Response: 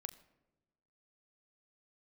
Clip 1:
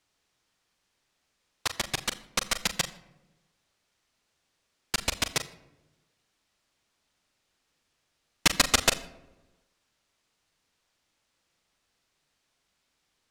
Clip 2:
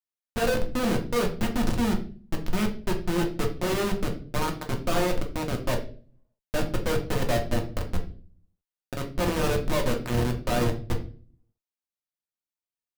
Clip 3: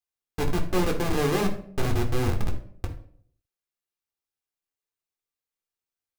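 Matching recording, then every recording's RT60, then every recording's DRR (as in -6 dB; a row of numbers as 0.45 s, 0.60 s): 1; 1.0 s, 0.40 s, 0.60 s; 9.5 dB, 1.5 dB, 2.0 dB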